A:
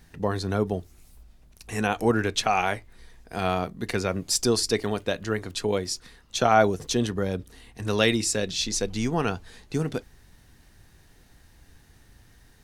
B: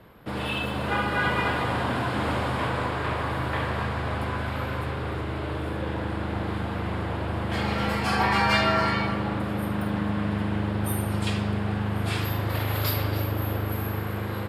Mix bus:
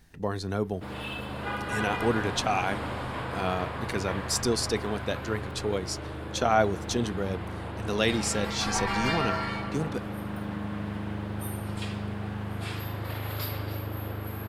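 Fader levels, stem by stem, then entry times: -4.0, -7.0 dB; 0.00, 0.55 s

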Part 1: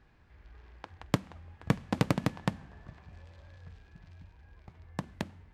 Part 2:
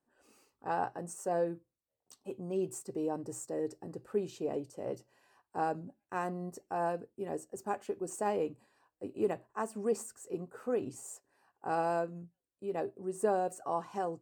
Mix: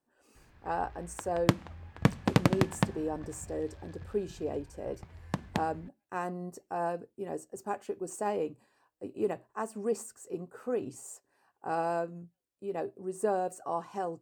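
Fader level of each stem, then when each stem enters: +3.0, +0.5 dB; 0.35, 0.00 s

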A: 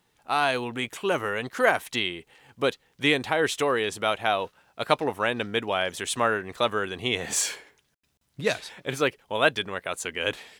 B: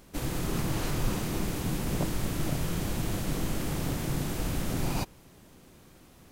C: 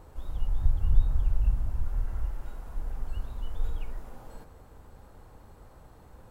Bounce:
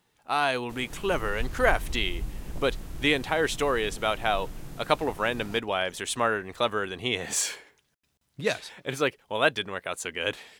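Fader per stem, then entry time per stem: -1.5, -13.0, -9.0 dB; 0.00, 0.55, 0.75 s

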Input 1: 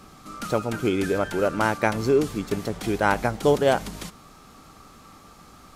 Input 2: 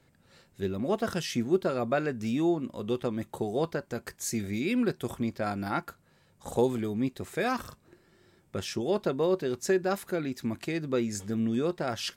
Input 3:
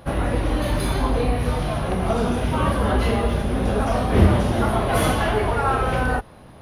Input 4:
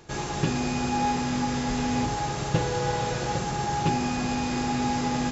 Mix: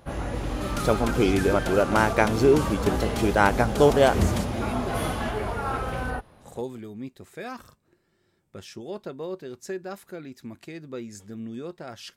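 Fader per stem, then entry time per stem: +1.5, -7.5, -8.5, -14.5 dB; 0.35, 0.00, 0.00, 0.00 s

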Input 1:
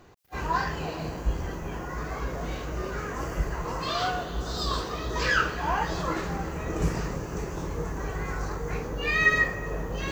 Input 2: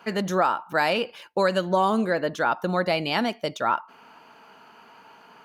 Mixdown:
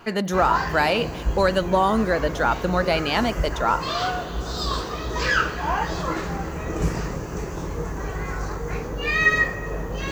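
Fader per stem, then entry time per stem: +3.0, +2.0 dB; 0.00, 0.00 s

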